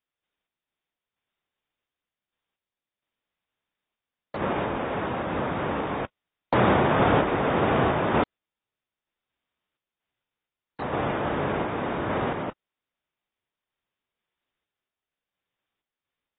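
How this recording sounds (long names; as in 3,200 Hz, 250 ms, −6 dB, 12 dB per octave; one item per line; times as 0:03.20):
sample-and-hold tremolo 4.3 Hz
AAC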